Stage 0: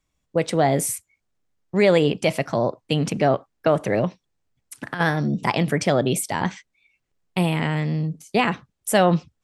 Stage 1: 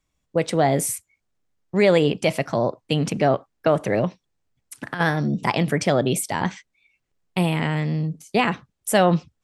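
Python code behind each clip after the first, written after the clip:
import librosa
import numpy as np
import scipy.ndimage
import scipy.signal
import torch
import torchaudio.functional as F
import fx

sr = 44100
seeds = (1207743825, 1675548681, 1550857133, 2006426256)

y = x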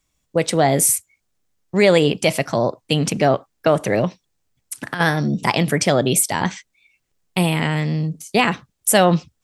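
y = fx.high_shelf(x, sr, hz=4000.0, db=8.5)
y = F.gain(torch.from_numpy(y), 2.5).numpy()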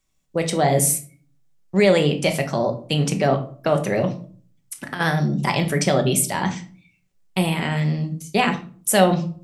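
y = fx.room_shoebox(x, sr, seeds[0], volume_m3=350.0, walls='furnished', distance_m=1.1)
y = F.gain(torch.from_numpy(y), -4.0).numpy()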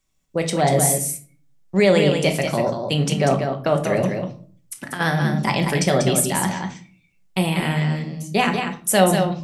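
y = x + 10.0 ** (-6.0 / 20.0) * np.pad(x, (int(191 * sr / 1000.0), 0))[:len(x)]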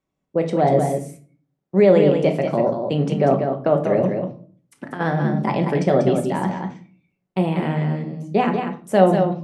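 y = fx.bandpass_q(x, sr, hz=380.0, q=0.64)
y = F.gain(torch.from_numpy(y), 3.5).numpy()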